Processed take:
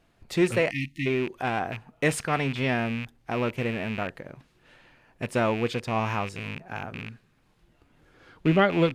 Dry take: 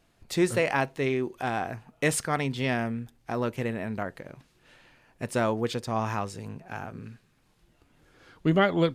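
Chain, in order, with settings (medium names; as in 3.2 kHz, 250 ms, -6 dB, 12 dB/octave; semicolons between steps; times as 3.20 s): rattle on loud lows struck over -37 dBFS, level -25 dBFS; spectral selection erased 0.70–1.06 s, 340–1800 Hz; tone controls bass 0 dB, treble -6 dB; trim +1.5 dB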